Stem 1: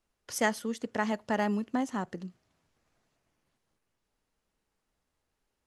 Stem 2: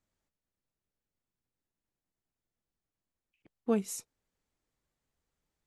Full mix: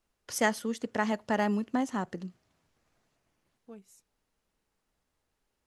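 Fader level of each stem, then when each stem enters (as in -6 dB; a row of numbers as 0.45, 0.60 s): +1.0, -20.0 dB; 0.00, 0.00 s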